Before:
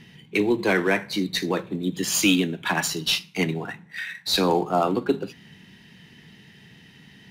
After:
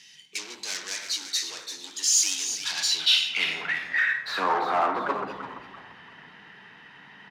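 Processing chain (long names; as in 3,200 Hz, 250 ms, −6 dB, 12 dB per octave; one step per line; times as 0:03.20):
0:00.82–0:02.49: Chebyshev high-pass filter 280 Hz, order 3
rectangular room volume 250 cubic metres, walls mixed, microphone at 0.41 metres
sine wavefolder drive 8 dB, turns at −6.5 dBFS
harmonic generator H 5 −13 dB, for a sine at −6.5 dBFS
echo with shifted repeats 339 ms, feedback 39%, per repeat −150 Hz, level −9.5 dB
band-pass filter sweep 6,100 Hz → 1,100 Hz, 0:02.46–0:04.49
level −5 dB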